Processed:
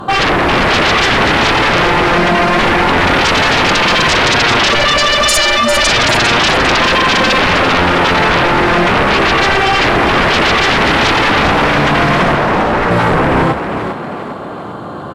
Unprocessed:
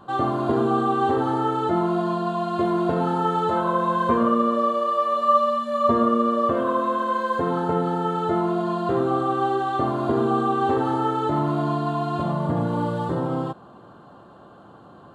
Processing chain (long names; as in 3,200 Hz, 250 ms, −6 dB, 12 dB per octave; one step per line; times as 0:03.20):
0:07.07–0:07.66: low-shelf EQ 220 Hz +11.5 dB
sine wavefolder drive 18 dB, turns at −7.5 dBFS
0:12.35–0:12.91: mid-hump overdrive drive 12 dB, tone 1,500 Hz, clips at −7 dBFS
echo with shifted repeats 400 ms, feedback 44%, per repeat +45 Hz, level −8 dB
level −1 dB